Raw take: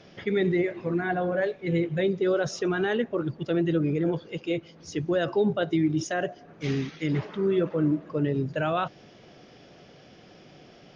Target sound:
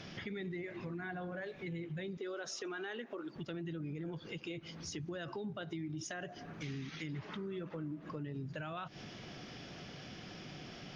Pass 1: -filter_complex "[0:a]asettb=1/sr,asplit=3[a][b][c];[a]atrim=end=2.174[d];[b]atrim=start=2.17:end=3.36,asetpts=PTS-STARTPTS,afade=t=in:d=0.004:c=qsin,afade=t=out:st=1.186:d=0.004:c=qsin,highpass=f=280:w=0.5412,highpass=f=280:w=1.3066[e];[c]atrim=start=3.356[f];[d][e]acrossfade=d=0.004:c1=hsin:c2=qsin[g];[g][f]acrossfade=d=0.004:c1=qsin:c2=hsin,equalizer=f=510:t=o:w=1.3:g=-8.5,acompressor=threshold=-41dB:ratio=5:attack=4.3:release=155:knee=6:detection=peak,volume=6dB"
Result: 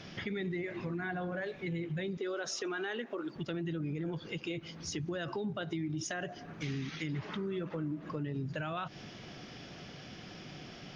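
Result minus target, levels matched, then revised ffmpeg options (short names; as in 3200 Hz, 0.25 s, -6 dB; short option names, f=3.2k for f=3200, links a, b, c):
compressor: peak gain reduction -5 dB
-filter_complex "[0:a]asettb=1/sr,asplit=3[a][b][c];[a]atrim=end=2.174[d];[b]atrim=start=2.17:end=3.36,asetpts=PTS-STARTPTS,afade=t=in:d=0.004:c=qsin,afade=t=out:st=1.186:d=0.004:c=qsin,highpass=f=280:w=0.5412,highpass=f=280:w=1.3066[e];[c]atrim=start=3.356[f];[d][e]acrossfade=d=0.004:c1=hsin:c2=qsin[g];[g][f]acrossfade=d=0.004:c1=qsin:c2=hsin,equalizer=f=510:t=o:w=1.3:g=-8.5,acompressor=threshold=-47.5dB:ratio=5:attack=4.3:release=155:knee=6:detection=peak,volume=6dB"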